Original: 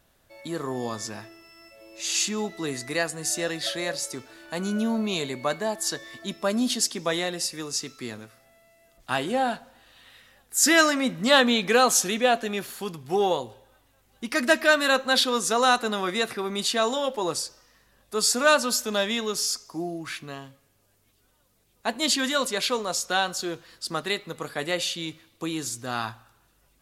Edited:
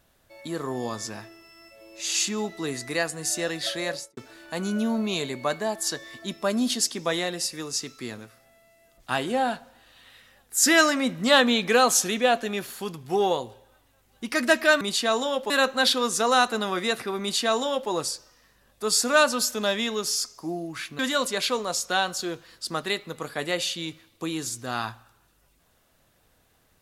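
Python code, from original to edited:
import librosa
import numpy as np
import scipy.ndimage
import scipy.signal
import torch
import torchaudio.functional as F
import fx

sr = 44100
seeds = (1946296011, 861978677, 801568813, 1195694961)

y = fx.studio_fade_out(x, sr, start_s=3.92, length_s=0.25)
y = fx.edit(y, sr, fx.duplicate(start_s=16.52, length_s=0.69, to_s=14.81),
    fx.cut(start_s=20.3, length_s=1.89), tone=tone)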